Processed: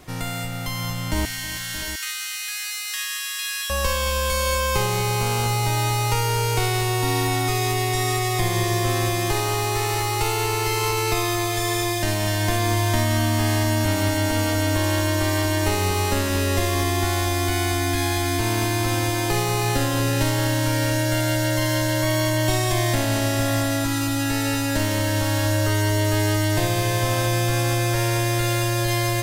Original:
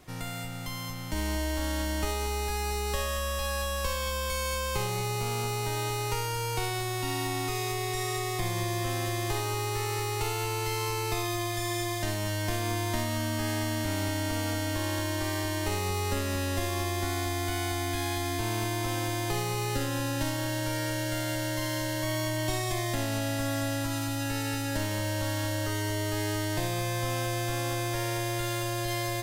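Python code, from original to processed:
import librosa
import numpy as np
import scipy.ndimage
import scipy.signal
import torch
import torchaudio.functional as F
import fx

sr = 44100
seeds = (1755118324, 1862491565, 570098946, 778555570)

y = fx.steep_highpass(x, sr, hz=1500.0, slope=36, at=(1.25, 3.7))
y = fx.echo_multitap(y, sr, ms=(319, 625, 704), db=(-16.5, -14.0, -11.5))
y = F.gain(torch.from_numpy(y), 8.0).numpy()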